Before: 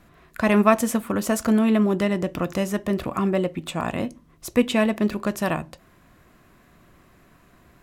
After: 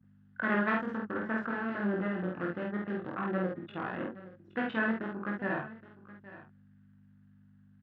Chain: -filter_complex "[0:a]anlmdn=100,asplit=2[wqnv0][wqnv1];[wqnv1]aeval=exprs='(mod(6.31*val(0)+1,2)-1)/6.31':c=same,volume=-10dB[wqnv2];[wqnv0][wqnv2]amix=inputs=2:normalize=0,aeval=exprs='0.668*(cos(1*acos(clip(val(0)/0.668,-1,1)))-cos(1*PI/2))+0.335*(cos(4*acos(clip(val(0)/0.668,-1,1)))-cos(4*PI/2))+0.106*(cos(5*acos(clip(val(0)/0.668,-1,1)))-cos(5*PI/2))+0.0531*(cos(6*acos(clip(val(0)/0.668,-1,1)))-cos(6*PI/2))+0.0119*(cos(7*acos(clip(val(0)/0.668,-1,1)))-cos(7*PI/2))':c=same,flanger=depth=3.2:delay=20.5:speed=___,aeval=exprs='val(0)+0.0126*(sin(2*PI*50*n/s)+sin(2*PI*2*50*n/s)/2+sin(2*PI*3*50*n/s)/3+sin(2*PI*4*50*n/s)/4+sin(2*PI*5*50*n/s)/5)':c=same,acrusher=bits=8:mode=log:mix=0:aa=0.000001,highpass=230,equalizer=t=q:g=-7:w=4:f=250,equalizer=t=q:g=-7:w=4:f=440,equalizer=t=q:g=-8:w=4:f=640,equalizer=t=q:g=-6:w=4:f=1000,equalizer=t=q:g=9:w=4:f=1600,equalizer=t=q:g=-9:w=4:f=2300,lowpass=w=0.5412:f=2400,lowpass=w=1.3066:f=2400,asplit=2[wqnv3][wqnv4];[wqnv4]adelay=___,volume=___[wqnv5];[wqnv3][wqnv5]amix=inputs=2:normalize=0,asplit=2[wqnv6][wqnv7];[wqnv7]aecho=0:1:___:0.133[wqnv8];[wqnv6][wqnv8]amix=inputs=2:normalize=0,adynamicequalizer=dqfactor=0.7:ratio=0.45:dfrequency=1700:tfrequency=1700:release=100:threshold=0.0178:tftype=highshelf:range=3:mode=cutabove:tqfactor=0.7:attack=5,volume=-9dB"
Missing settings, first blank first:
0.56, 49, -2dB, 820